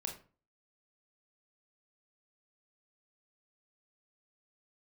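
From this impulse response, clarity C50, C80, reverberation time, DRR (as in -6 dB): 9.0 dB, 14.0 dB, 0.40 s, 2.0 dB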